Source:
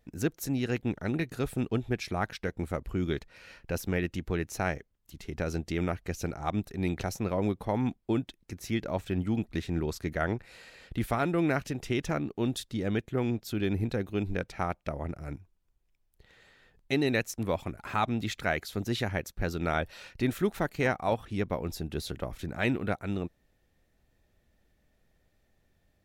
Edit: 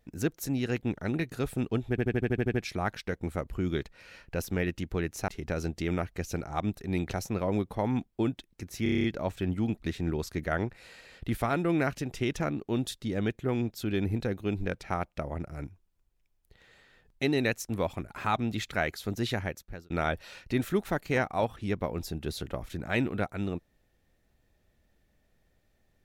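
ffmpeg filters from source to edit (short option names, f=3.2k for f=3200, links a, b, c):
-filter_complex "[0:a]asplit=18[a][b][c][d][e][f][g][h][i][j][k][l][m][n][o][p][q][r];[a]atrim=end=1.982[s];[b]atrim=start=1.898:end=1.982[t];[c]atrim=start=1.898:end=1.982[u];[d]atrim=start=1.898:end=1.982[v];[e]atrim=start=1.898:end=1.982[w];[f]atrim=start=1.898:end=1.982[x];[g]atrim=start=1.898:end=1.982[y];[h]atrim=start=1.898:end=1.982[z];[i]atrim=start=1.898:end=4.642[aa];[j]atrim=start=5.178:end=8.762[ab];[k]atrim=start=8.728:end=8.762[ac];[l]atrim=start=8.728:end=8.762[ad];[m]atrim=start=8.728:end=8.762[ae];[n]atrim=start=8.728:end=8.762[af];[o]atrim=start=8.728:end=8.762[ag];[p]atrim=start=8.728:end=8.762[ah];[q]atrim=start=8.728:end=19.59,asetpts=PTS-STARTPTS,afade=t=out:st=10.322:d=0.54[ai];[r]atrim=start=19.59,asetpts=PTS-STARTPTS,afade=t=in:d=0.004:c=hsin[aj];[s][t]acrossfade=d=0.004:c1=hsin:c2=hsin[ak];[ak][u]acrossfade=d=0.004:c1=hsin:c2=hsin[al];[al][v]acrossfade=d=0.004:c1=hsin:c2=hsin[am];[am][w]acrossfade=d=0.004:c1=hsin:c2=hsin[an];[an][x]acrossfade=d=0.004:c1=hsin:c2=hsin[ao];[ao][y]acrossfade=d=0.004:c1=hsin:c2=hsin[ap];[ap][z]acrossfade=d=0.004:c1=hsin:c2=hsin[aq];[aq][aa]acrossfade=d=0.004:c1=hsin:c2=hsin[ar];[ar][ab]acrossfade=d=0.004:c1=hsin:c2=hsin[as];[as][ac]acrossfade=d=0.004:c1=hsin:c2=hsin[at];[at][ad]acrossfade=d=0.004:c1=hsin:c2=hsin[au];[au][ae]acrossfade=d=0.004:c1=hsin:c2=hsin[av];[av][af]acrossfade=d=0.004:c1=hsin:c2=hsin[aw];[aw][ag]acrossfade=d=0.004:c1=hsin:c2=hsin[ax];[ax][ah]acrossfade=d=0.004:c1=hsin:c2=hsin[ay];[ai][aj]concat=n=2:v=0:a=1[az];[ay][az]acrossfade=d=0.004:c1=hsin:c2=hsin"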